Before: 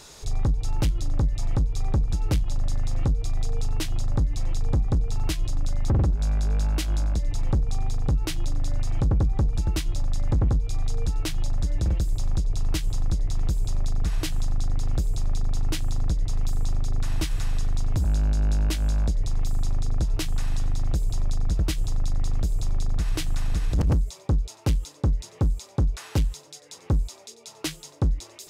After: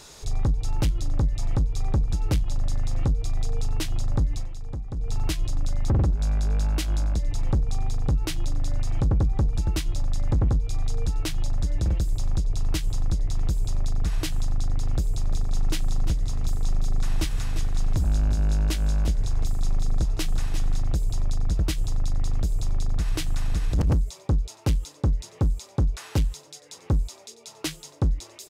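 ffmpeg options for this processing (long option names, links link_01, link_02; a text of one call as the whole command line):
ffmpeg -i in.wav -filter_complex "[0:a]asplit=3[link_01][link_02][link_03];[link_01]afade=type=out:start_time=15.3:duration=0.02[link_04];[link_02]aecho=1:1:348:0.316,afade=type=in:start_time=15.3:duration=0.02,afade=type=out:start_time=20.79:duration=0.02[link_05];[link_03]afade=type=in:start_time=20.79:duration=0.02[link_06];[link_04][link_05][link_06]amix=inputs=3:normalize=0,asplit=3[link_07][link_08][link_09];[link_07]atrim=end=4.49,asetpts=PTS-STARTPTS,afade=type=out:start_time=4.34:duration=0.15:silence=0.316228[link_10];[link_08]atrim=start=4.49:end=4.95,asetpts=PTS-STARTPTS,volume=-10dB[link_11];[link_09]atrim=start=4.95,asetpts=PTS-STARTPTS,afade=type=in:duration=0.15:silence=0.316228[link_12];[link_10][link_11][link_12]concat=n=3:v=0:a=1" out.wav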